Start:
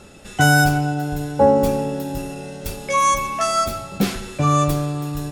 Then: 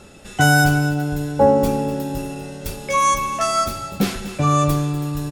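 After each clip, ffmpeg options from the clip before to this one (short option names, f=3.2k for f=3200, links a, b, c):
-af "aecho=1:1:246:0.2"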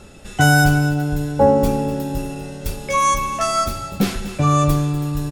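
-af "lowshelf=f=85:g=8"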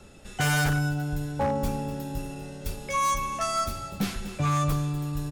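-filter_complex "[0:a]acrossover=split=250|650|3500[a][b][c][d];[b]acompressor=threshold=-34dB:ratio=6[e];[a][e][c][d]amix=inputs=4:normalize=0,aeval=exprs='0.282*(abs(mod(val(0)/0.282+3,4)-2)-1)':c=same,volume=-7.5dB"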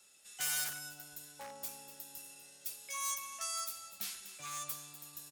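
-af "aderivative,volume=-2dB"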